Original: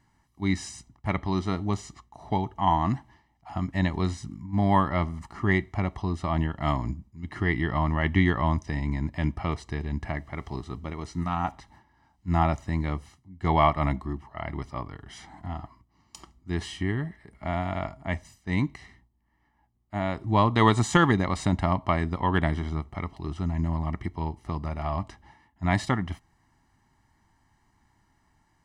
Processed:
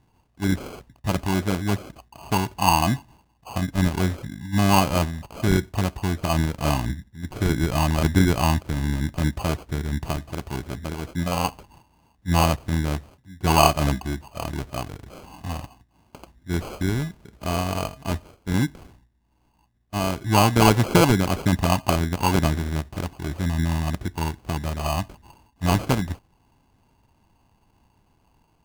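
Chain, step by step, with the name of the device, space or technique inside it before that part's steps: crushed at another speed (playback speed 0.8×; sample-and-hold 30×; playback speed 1.25×); trim +4 dB

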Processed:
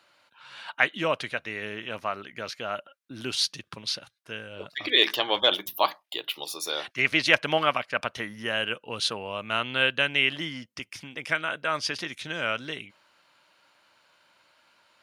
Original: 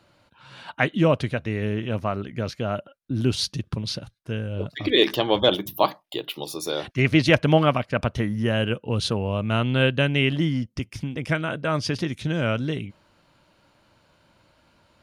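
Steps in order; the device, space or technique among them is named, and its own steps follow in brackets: filter by subtraction (in parallel: low-pass 1.7 kHz 12 dB/octave + polarity flip)

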